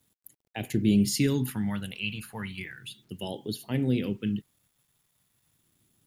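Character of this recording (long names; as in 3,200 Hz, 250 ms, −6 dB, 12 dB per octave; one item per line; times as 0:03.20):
phaser sweep stages 2, 0.35 Hz, lowest notch 320–1,300 Hz
a quantiser's noise floor 12 bits, dither none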